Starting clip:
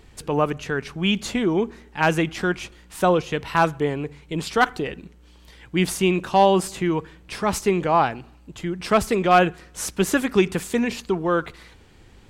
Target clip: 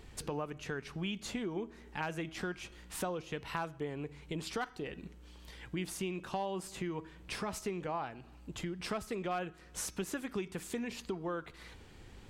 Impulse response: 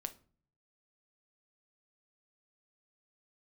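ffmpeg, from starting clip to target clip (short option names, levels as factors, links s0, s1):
-af "acompressor=threshold=0.02:ratio=4,bandreject=f=320.6:t=h:w=4,bandreject=f=641.2:t=h:w=4,bandreject=f=961.8:t=h:w=4,bandreject=f=1282.4:t=h:w=4,bandreject=f=1603:t=h:w=4,bandreject=f=1923.6:t=h:w=4,bandreject=f=2244.2:t=h:w=4,bandreject=f=2564.8:t=h:w=4,bandreject=f=2885.4:t=h:w=4,bandreject=f=3206:t=h:w=4,bandreject=f=3526.6:t=h:w=4,bandreject=f=3847.2:t=h:w=4,bandreject=f=4167.8:t=h:w=4,bandreject=f=4488.4:t=h:w=4,bandreject=f=4809:t=h:w=4,bandreject=f=5129.6:t=h:w=4,bandreject=f=5450.2:t=h:w=4,bandreject=f=5770.8:t=h:w=4,bandreject=f=6091.4:t=h:w=4,bandreject=f=6412:t=h:w=4,volume=0.668"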